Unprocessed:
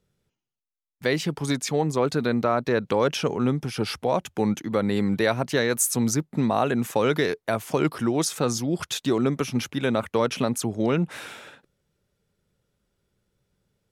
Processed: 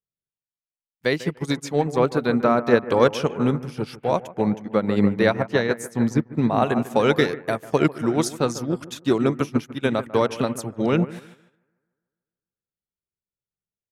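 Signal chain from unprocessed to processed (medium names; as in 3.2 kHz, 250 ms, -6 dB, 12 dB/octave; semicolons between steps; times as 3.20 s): 4.30–6.63 s: treble shelf 5.5 kHz -12 dB; bucket-brigade echo 147 ms, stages 2048, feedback 58%, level -7.5 dB; upward expansion 2.5:1, over -41 dBFS; trim +7 dB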